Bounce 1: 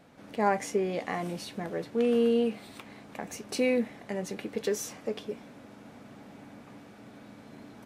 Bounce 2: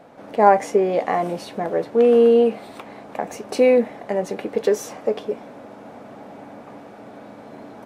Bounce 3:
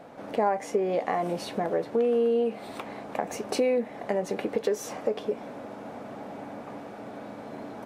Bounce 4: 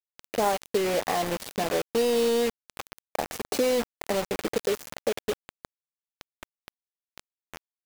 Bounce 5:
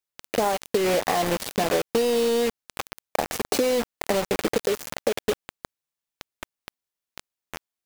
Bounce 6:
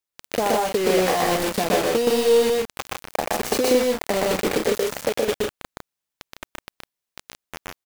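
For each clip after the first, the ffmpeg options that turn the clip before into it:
-af "equalizer=f=660:t=o:w=2.3:g=13,volume=1.19"
-af "acompressor=threshold=0.0562:ratio=3"
-af "acrusher=bits=4:mix=0:aa=0.000001"
-af "acompressor=threshold=0.0562:ratio=6,volume=2.11"
-af "aecho=1:1:122.4|154.5:0.891|0.631"

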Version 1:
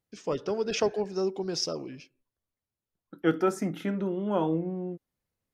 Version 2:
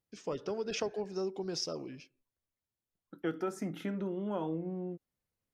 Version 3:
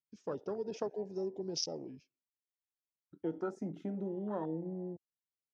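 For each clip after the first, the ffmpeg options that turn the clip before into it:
-af "acompressor=threshold=0.0355:ratio=2.5,volume=0.631"
-af "highpass=110,afwtdn=0.0112,lowpass=f=6400:t=q:w=1.9,volume=0.794"

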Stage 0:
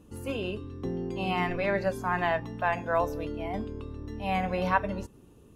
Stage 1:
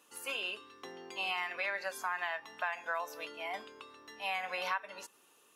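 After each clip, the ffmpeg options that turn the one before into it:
-af "highpass=1200,acompressor=threshold=0.0141:ratio=6,volume=1.78"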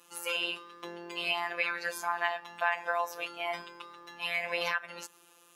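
-af "afftfilt=real='hypot(re,im)*cos(PI*b)':imag='0':win_size=1024:overlap=0.75,volume=2.66"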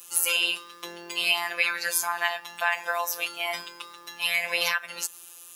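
-af "crystalizer=i=5.5:c=0"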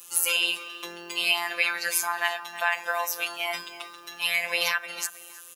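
-filter_complex "[0:a]asplit=2[s0][s1];[s1]adelay=316,lowpass=f=2300:p=1,volume=0.224,asplit=2[s2][s3];[s3]adelay=316,lowpass=f=2300:p=1,volume=0.34,asplit=2[s4][s5];[s5]adelay=316,lowpass=f=2300:p=1,volume=0.34[s6];[s0][s2][s4][s6]amix=inputs=4:normalize=0"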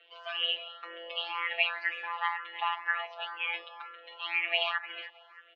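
-filter_complex "[0:a]highpass=f=160:t=q:w=0.5412,highpass=f=160:t=q:w=1.307,lowpass=f=3000:t=q:w=0.5176,lowpass=f=3000:t=q:w=0.7071,lowpass=f=3000:t=q:w=1.932,afreqshift=160,asplit=2[s0][s1];[s1]afreqshift=2[s2];[s0][s2]amix=inputs=2:normalize=1"

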